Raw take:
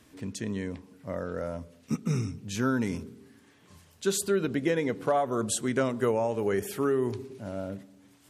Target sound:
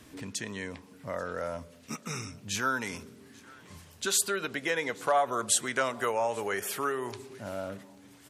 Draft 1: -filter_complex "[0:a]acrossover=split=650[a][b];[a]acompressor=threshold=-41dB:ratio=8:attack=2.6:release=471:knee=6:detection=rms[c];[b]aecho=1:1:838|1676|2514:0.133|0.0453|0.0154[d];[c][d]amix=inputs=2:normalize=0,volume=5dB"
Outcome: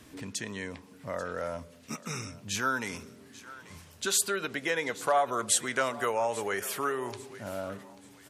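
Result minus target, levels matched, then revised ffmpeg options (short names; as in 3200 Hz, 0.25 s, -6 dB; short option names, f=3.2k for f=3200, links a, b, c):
echo-to-direct +7 dB
-filter_complex "[0:a]acrossover=split=650[a][b];[a]acompressor=threshold=-41dB:ratio=8:attack=2.6:release=471:knee=6:detection=rms[c];[b]aecho=1:1:838|1676:0.0596|0.0203[d];[c][d]amix=inputs=2:normalize=0,volume=5dB"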